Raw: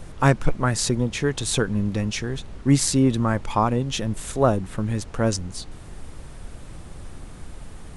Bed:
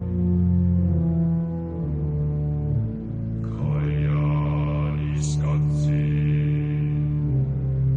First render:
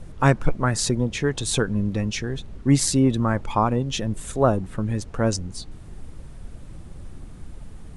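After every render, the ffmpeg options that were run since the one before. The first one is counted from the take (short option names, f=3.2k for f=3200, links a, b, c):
-af "afftdn=nr=7:nf=-40"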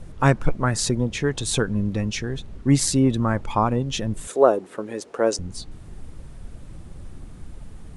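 -filter_complex "[0:a]asettb=1/sr,asplit=3[a][b][c];[a]atrim=end=4.274[d];[b]atrim=start=4.27:end=5.39,asetpts=PTS-STARTPTS,afade=t=in:d=0.004:c=qsin,afade=t=out:st=1.116:d=0.004:c=qsin,highpass=f=410:t=q:w=2[e];[c]atrim=start=5.386[f];[d][e]acrossfade=d=0.004:c1=hsin:c2=qsin[g];[g][f]acrossfade=d=0.004:c1=qsin:c2=hsin"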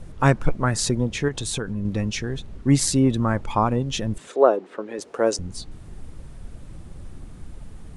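-filter_complex "[0:a]asettb=1/sr,asplit=3[a][b][c];[a]atrim=end=1.284[d];[b]atrim=start=1.28:end=1.85,asetpts=PTS-STARTPTS,afade=t=in:d=0.004:c=qsin,afade=t=out:st=0.566:d=0.004:c=qsin,acompressor=threshold=-25dB:ratio=2.5:attack=3.2:release=140:knee=1:detection=peak[e];[c]atrim=start=1.846[f];[d][e]acrossfade=d=0.004:c1=hsin:c2=qsin[g];[g][f]acrossfade=d=0.004:c1=qsin:c2=hsin,asettb=1/sr,asplit=3[h][i][j];[h]atrim=end=4.184[k];[i]atrim=start=4.18:end=4.99,asetpts=PTS-STARTPTS,afade=t=in:d=0.004:c=qsin,afade=t=out:st=0.806:d=0.004:c=qsin,highpass=240,lowpass=4.5k[l];[j]atrim=start=4.986[m];[k][l]acrossfade=d=0.004:c1=hsin:c2=qsin[n];[n][m]acrossfade=d=0.004:c1=qsin:c2=hsin"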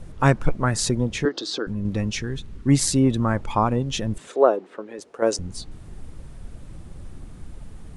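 -filter_complex "[0:a]asettb=1/sr,asplit=3[a][b][c];[a]atrim=end=1.254[d];[b]atrim=start=1.25:end=1.67,asetpts=PTS-STARTPTS,afade=t=in:d=0.004:c=qsin,afade=t=out:st=0.416:d=0.004:c=qsin,highpass=f=260:w=0.5412,highpass=f=260:w=1.3066,equalizer=f=320:t=q:w=4:g=9,equalizer=f=540:t=q:w=4:g=3,equalizer=f=910:t=q:w=4:g=-4,equalizer=f=1.3k:t=q:w=4:g=5,equalizer=f=2.4k:t=q:w=4:g=-10,equalizer=f=4.7k:t=q:w=4:g=10,lowpass=f=5.5k:w=0.5412,lowpass=f=5.5k:w=1.3066[e];[c]atrim=start=1.666[f];[d][e]acrossfade=d=0.004:c1=hsin:c2=qsin[g];[g][f]acrossfade=d=0.004:c1=qsin:c2=hsin,asettb=1/sr,asplit=3[h][i][j];[h]atrim=end=2.224[k];[i]atrim=start=2.22:end=2.69,asetpts=PTS-STARTPTS,afade=t=in:d=0.004:c=qsin,afade=t=out:st=0.466:d=0.004:c=qsin,equalizer=f=650:w=2:g=-9.5[l];[j]atrim=start=2.686[m];[k][l]acrossfade=d=0.004:c1=hsin:c2=qsin[n];[n][m]acrossfade=d=0.004:c1=qsin:c2=hsin,asplit=2[o][p];[o]atrim=end=5.22,asetpts=PTS-STARTPTS,afade=t=out:st=4.35:d=0.87:silence=0.398107[q];[p]atrim=start=5.22,asetpts=PTS-STARTPTS,afade=t=in:d=0.004:c=hsin:silence=0.398107[r];[q][r]concat=n=2:v=0:a=1"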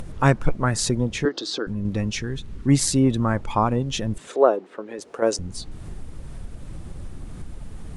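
-af "acompressor=mode=upward:threshold=-27dB:ratio=2.5"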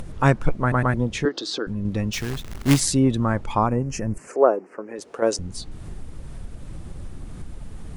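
-filter_complex "[0:a]asplit=3[a][b][c];[a]afade=t=out:st=2.12:d=0.02[d];[b]acrusher=bits=2:mode=log:mix=0:aa=0.000001,afade=t=in:st=2.12:d=0.02,afade=t=out:st=2.79:d=0.02[e];[c]afade=t=in:st=2.79:d=0.02[f];[d][e][f]amix=inputs=3:normalize=0,asettb=1/sr,asplit=3[g][h][i];[g]atrim=end=3.664[j];[h]atrim=start=3.66:end=4.96,asetpts=PTS-STARTPTS,afade=t=in:d=0.004:c=qsin,afade=t=out:st=1.296:d=0.004:c=qsin,asuperstop=centerf=3600:order=4:qfactor=1.3[k];[i]atrim=start=4.956[l];[j][k]acrossfade=d=0.004:c1=hsin:c2=qsin[m];[m][l]acrossfade=d=0.004:c1=qsin:c2=hsin,asplit=4[n][o][p][q];[n]atrim=end=0.722[r];[o]atrim=start=0.608:end=0.722[s];[p]atrim=start=0.608:end=0.722[t];[q]atrim=start=0.938[u];[r][s]acrossfade=d=0.004:c1=hsin:c2=hsin[v];[v][t]acrossfade=d=0.004:c1=hsin:c2=hsin[w];[w][u]acrossfade=d=0.004:c1=hsin:c2=hsin"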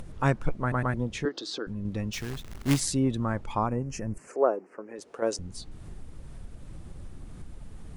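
-af "volume=-7dB"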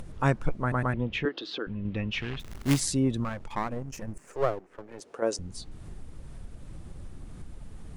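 -filter_complex "[0:a]asettb=1/sr,asplit=3[a][b][c];[a]atrim=end=0.934[d];[b]atrim=start=0.93:end=2.4,asetpts=PTS-STARTPTS,afade=t=in:d=0.004:c=qsin,afade=t=out:st=1.466:d=0.004:c=qsin,lowpass=f=2.8k:t=q:w=2.5[e];[c]atrim=start=2.396[f];[d][e]acrossfade=d=0.004:c1=hsin:c2=qsin[g];[g][f]acrossfade=d=0.004:c1=qsin:c2=hsin,asettb=1/sr,asplit=3[h][i][j];[h]atrim=end=3.244[k];[i]atrim=start=3.24:end=5,asetpts=PTS-STARTPTS,afade=t=in:d=0.004:c=qsin,afade=t=out:st=1.756:d=0.004:c=qsin,aeval=exprs='if(lt(val(0),0),0.251*val(0),val(0))':c=same[l];[j]atrim=start=4.996[m];[k][l]acrossfade=d=0.004:c1=hsin:c2=qsin[n];[n][m]acrossfade=d=0.004:c1=qsin:c2=hsin"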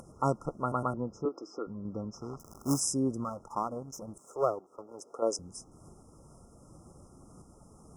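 -af "highpass=f=320:p=1,afftfilt=real='re*(1-between(b*sr/4096,1400,5000))':imag='im*(1-between(b*sr/4096,1400,5000))':win_size=4096:overlap=0.75"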